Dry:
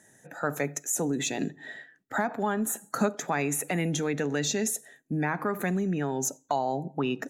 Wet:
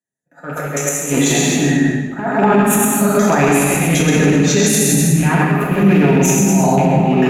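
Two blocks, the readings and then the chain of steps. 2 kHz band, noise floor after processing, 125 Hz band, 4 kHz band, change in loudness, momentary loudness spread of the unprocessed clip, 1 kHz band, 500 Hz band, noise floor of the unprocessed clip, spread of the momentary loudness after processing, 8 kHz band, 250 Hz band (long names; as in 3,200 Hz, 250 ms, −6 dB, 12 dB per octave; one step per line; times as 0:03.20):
+14.0 dB, −46 dBFS, +19.0 dB, +14.5 dB, +16.0 dB, 7 LU, +13.5 dB, +15.0 dB, −63 dBFS, 6 LU, +15.0 dB, +17.5 dB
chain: loose part that buzzes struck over −33 dBFS, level −25 dBFS
noise gate with hold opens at −45 dBFS
parametric band 170 Hz +6 dB 2 octaves
echo with a time of its own for lows and highs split 340 Hz, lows 571 ms, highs 128 ms, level −4 dB
transient designer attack +8 dB, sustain −1 dB
soft clipping −6.5 dBFS, distortion −20 dB
volume swells 271 ms
reverb whose tail is shaped and stops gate 490 ms falling, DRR −4 dB
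boost into a limiter +15.5 dB
multiband upward and downward expander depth 70%
level −3 dB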